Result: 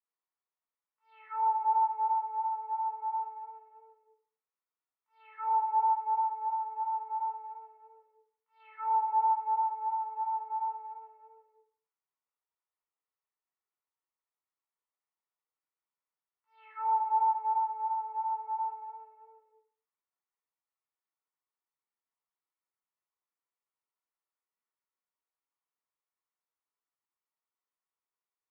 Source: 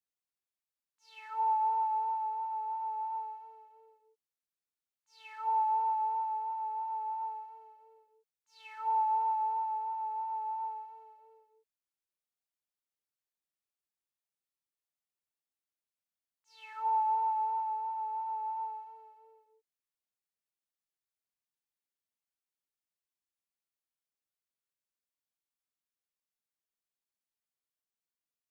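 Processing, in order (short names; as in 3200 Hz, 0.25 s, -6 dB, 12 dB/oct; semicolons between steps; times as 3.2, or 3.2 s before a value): speaker cabinet 490–2000 Hz, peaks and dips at 590 Hz -7 dB, 1100 Hz +4 dB, 1600 Hz -8 dB; reverb RT60 0.50 s, pre-delay 8 ms, DRR -4 dB; gain -2.5 dB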